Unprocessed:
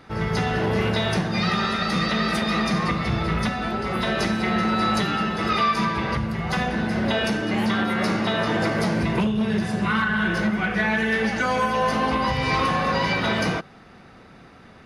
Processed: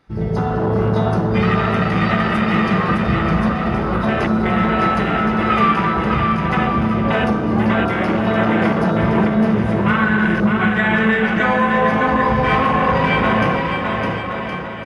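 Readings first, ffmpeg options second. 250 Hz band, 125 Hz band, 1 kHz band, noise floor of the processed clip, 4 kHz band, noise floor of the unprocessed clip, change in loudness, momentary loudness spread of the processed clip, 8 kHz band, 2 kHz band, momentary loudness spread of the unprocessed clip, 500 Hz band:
+7.0 dB, +7.0 dB, +6.5 dB, -24 dBFS, -2.0 dB, -48 dBFS, +6.0 dB, 4 LU, no reading, +5.0 dB, 3 LU, +7.0 dB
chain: -filter_complex "[0:a]afwtdn=0.0562,asplit=2[s0][s1];[s1]aecho=0:1:610|1068|1411|1668|1861:0.631|0.398|0.251|0.158|0.1[s2];[s0][s2]amix=inputs=2:normalize=0,volume=1.78"

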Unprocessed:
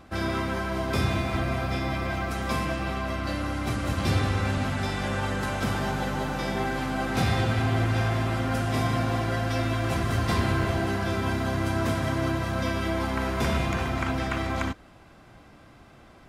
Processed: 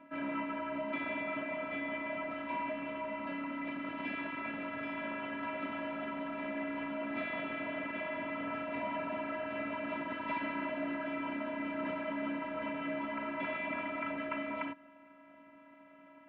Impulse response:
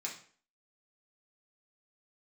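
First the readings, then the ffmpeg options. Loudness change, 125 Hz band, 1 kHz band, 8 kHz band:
-10.5 dB, -30.0 dB, -9.0 dB, under -40 dB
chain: -filter_complex "[0:a]afftfilt=real='hypot(re,im)*cos(PI*b)':imag='0':win_size=512:overlap=0.75,highshelf=f=2000:g=4,acrossover=split=1300[s0][s1];[s0]volume=37.6,asoftclip=hard,volume=0.0266[s2];[s2][s1]amix=inputs=2:normalize=0,highpass=f=170:t=q:w=0.5412,highpass=f=170:t=q:w=1.307,lowpass=f=2600:t=q:w=0.5176,lowpass=f=2600:t=q:w=0.7071,lowpass=f=2600:t=q:w=1.932,afreqshift=-63,volume=0.841"

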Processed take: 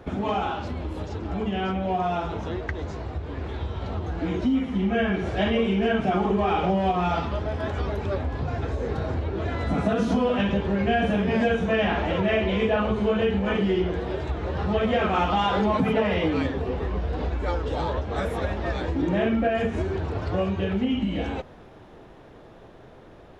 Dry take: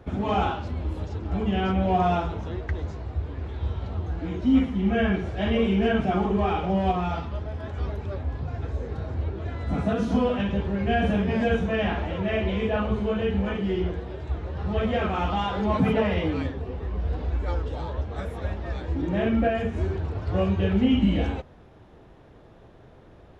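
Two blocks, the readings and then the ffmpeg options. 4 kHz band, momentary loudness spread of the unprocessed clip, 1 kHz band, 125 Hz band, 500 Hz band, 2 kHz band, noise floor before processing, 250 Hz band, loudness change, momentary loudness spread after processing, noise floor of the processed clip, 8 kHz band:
+3.0 dB, 10 LU, +2.0 dB, -1.0 dB, +2.5 dB, +3.0 dB, -50 dBFS, 0.0 dB, +1.0 dB, 8 LU, -47 dBFS, no reading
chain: -af "acompressor=threshold=0.0447:ratio=6,equalizer=f=68:w=0.52:g=-7,dynaudnorm=f=920:g=9:m=1.58,volume=1.88"

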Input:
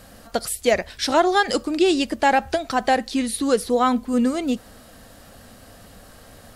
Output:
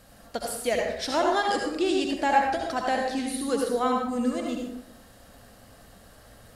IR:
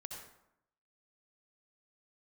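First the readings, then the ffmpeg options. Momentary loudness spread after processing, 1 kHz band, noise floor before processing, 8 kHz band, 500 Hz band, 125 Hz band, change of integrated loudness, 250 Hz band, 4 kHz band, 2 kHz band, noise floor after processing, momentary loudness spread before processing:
10 LU, -4.0 dB, -47 dBFS, -6.5 dB, -5.5 dB, no reading, -5.5 dB, -6.5 dB, -6.0 dB, -5.5 dB, -53 dBFS, 7 LU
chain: -filter_complex "[1:a]atrim=start_sample=2205[s0];[0:a][s0]afir=irnorm=-1:irlink=0,volume=0.75"

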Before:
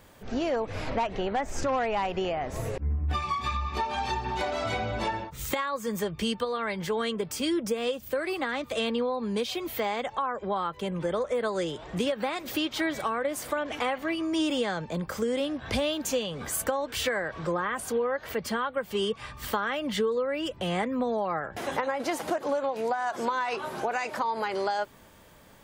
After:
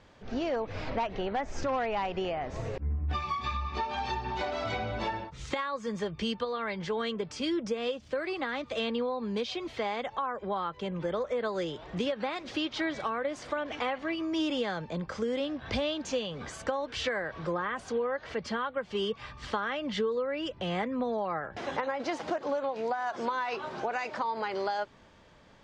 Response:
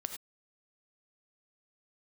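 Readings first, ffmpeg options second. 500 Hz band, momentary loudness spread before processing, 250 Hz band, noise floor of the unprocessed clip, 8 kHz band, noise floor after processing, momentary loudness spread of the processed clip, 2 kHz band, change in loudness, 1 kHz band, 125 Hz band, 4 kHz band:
-3.0 dB, 4 LU, -3.0 dB, -50 dBFS, -11.0 dB, -54 dBFS, 4 LU, -3.0 dB, -3.0 dB, -3.0 dB, -3.0 dB, -3.0 dB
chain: -af "lowpass=f=5900:w=0.5412,lowpass=f=5900:w=1.3066,volume=0.708"

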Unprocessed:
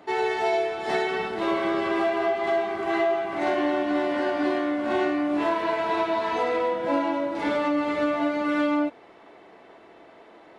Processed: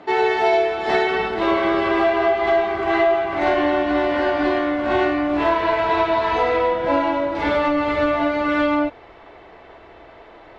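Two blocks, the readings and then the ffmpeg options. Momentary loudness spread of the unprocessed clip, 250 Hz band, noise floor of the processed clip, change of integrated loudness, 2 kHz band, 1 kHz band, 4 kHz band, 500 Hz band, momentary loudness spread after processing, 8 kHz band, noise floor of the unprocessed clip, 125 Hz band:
2 LU, +3.5 dB, -45 dBFS, +6.0 dB, +7.0 dB, +6.5 dB, +6.0 dB, +6.0 dB, 3 LU, no reading, -51 dBFS, +10.0 dB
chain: -af "lowpass=4800,asubboost=boost=10.5:cutoff=66,volume=2.24"

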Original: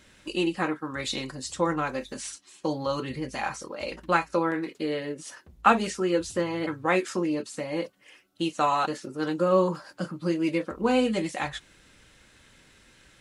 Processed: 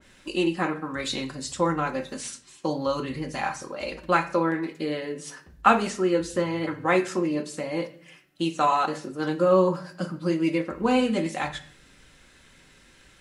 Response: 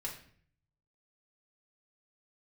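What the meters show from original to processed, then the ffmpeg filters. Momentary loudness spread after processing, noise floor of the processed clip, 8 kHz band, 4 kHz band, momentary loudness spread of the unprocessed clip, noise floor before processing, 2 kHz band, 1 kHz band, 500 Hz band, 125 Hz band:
12 LU, -56 dBFS, +0.5 dB, +0.5 dB, 12 LU, -58 dBFS, +1.0 dB, +2.0 dB, +2.0 dB, +2.5 dB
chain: -filter_complex "[0:a]asplit=2[s0][s1];[1:a]atrim=start_sample=2205[s2];[s1][s2]afir=irnorm=-1:irlink=0,volume=0.75[s3];[s0][s3]amix=inputs=2:normalize=0,adynamicequalizer=threshold=0.02:dfrequency=2300:dqfactor=0.7:tfrequency=2300:tqfactor=0.7:attack=5:release=100:ratio=0.375:range=2:mode=cutabove:tftype=highshelf,volume=0.794"

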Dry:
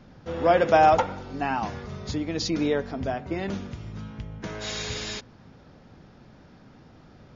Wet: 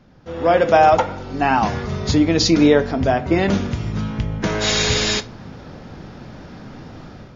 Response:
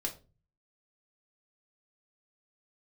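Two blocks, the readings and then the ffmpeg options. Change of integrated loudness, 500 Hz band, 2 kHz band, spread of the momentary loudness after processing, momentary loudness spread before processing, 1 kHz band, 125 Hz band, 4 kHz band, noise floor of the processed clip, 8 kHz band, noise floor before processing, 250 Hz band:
+8.0 dB, +7.5 dB, +9.0 dB, 24 LU, 19 LU, +6.0 dB, +11.5 dB, +12.5 dB, -40 dBFS, no reading, -52 dBFS, +11.5 dB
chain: -filter_complex "[0:a]dynaudnorm=f=150:g=5:m=5.62,asplit=2[s0][s1];[1:a]atrim=start_sample=2205,adelay=24[s2];[s1][s2]afir=irnorm=-1:irlink=0,volume=0.168[s3];[s0][s3]amix=inputs=2:normalize=0,volume=0.891"

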